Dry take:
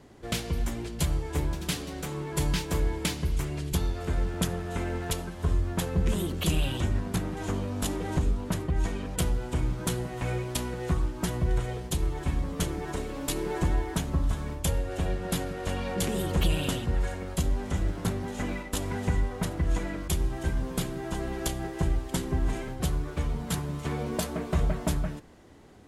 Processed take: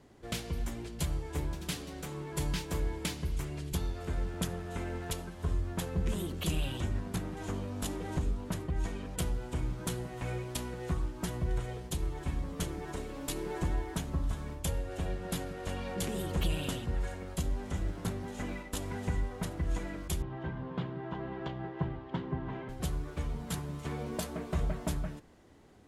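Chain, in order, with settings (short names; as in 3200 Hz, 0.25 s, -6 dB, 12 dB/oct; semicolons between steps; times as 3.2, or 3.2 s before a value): 20.22–22.69 speaker cabinet 110–3100 Hz, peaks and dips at 140 Hz +8 dB, 980 Hz +6 dB, 2400 Hz -5 dB; gain -6 dB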